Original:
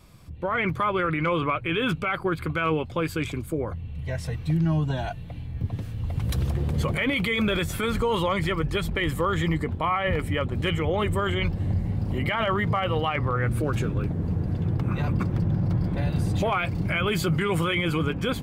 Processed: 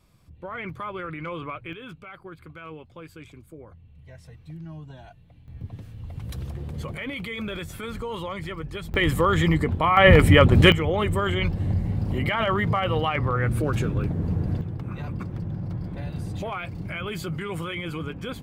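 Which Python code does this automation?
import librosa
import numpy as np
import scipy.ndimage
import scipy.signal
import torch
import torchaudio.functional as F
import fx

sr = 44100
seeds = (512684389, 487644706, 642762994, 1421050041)

y = fx.gain(x, sr, db=fx.steps((0.0, -9.0), (1.73, -16.0), (5.48, -8.0), (8.94, 4.0), (9.97, 12.0), (10.72, 1.0), (14.61, -7.0)))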